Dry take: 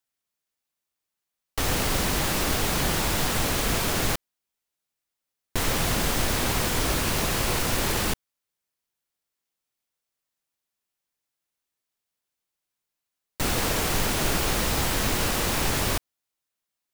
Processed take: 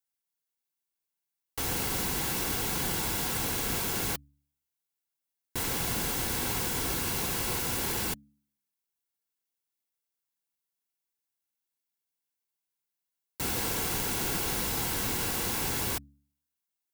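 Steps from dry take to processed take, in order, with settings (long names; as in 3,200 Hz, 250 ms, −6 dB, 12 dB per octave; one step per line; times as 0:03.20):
high-shelf EQ 8,900 Hz +8.5 dB
notch comb filter 610 Hz
hum removal 70.94 Hz, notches 4
level −6.5 dB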